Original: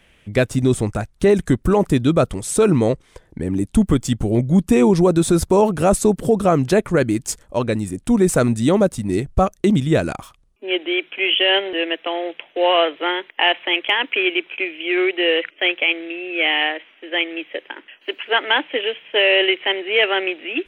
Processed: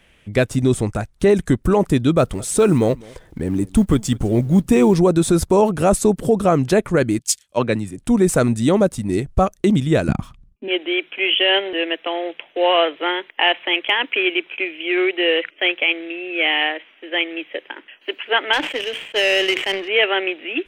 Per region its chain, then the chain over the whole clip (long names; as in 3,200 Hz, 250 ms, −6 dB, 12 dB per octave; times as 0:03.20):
0:02.18–0:04.99: mu-law and A-law mismatch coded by mu + single-tap delay 204 ms −24 dB
0:07.19–0:07.98: high-pass filter 83 Hz + parametric band 3,100 Hz +5.5 dB 2.2 octaves + multiband upward and downward expander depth 100%
0:10.08–0:10.68: downward expander −57 dBFS + low-pass filter 4,000 Hz 6 dB per octave + low shelf with overshoot 310 Hz +12.5 dB, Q 1.5
0:18.53–0:19.88: power curve on the samples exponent 1.4 + level that may fall only so fast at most 75 dB per second
whole clip: no processing